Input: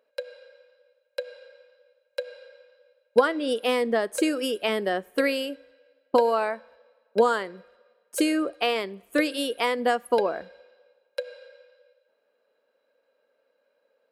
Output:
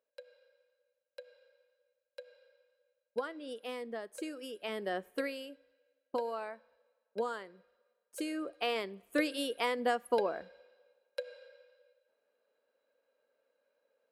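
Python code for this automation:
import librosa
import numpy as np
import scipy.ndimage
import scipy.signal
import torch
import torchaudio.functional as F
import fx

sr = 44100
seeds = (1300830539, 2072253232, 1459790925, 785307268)

y = fx.gain(x, sr, db=fx.line((4.47, -17.0), (5.06, -7.0), (5.31, -15.0), (8.21, -15.0), (8.77, -7.5)))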